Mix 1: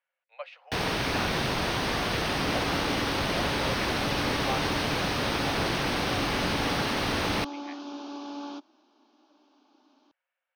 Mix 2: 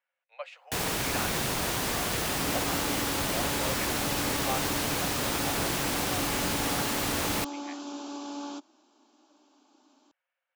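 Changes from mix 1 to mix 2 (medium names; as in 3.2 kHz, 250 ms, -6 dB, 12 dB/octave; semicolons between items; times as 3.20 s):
first sound -3.0 dB; master: remove Savitzky-Golay filter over 15 samples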